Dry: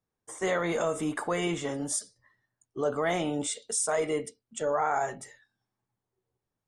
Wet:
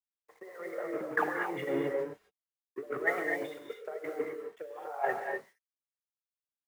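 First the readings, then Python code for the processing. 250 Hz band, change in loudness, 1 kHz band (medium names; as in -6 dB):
-6.5 dB, -5.0 dB, -5.0 dB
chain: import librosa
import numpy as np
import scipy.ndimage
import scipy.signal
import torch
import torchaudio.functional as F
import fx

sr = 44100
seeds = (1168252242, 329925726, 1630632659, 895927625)

y = fx.envelope_sharpen(x, sr, power=2.0)
y = fx.notch(y, sr, hz=670.0, q=12.0)
y = np.sign(y) * np.maximum(np.abs(y) - 10.0 ** (-46.0 / 20.0), 0.0)
y = fx.over_compress(y, sr, threshold_db=-35.0, ratio=-0.5)
y = fx.cabinet(y, sr, low_hz=150.0, low_slope=24, high_hz=2400.0, hz=(180.0, 260.0, 700.0, 1900.0), db=(-10, -8, 3, 8))
y = fx.quant_dither(y, sr, seeds[0], bits=10, dither='none')
y = fx.rev_gated(y, sr, seeds[1], gate_ms=280, shape='rising', drr_db=0.5)
y = fx.band_widen(y, sr, depth_pct=70)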